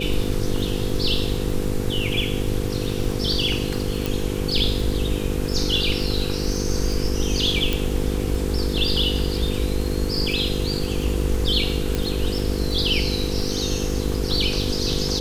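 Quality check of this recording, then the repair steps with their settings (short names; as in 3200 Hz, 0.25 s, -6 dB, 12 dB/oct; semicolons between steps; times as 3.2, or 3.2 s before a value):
buzz 50 Hz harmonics 10 -27 dBFS
crackle 38/s -27 dBFS
4.06 pop
7.73 pop
11.95 pop -9 dBFS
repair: de-click; de-hum 50 Hz, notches 10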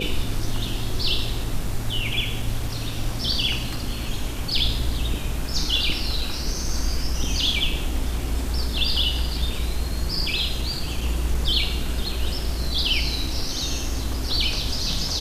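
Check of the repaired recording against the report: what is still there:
7.73 pop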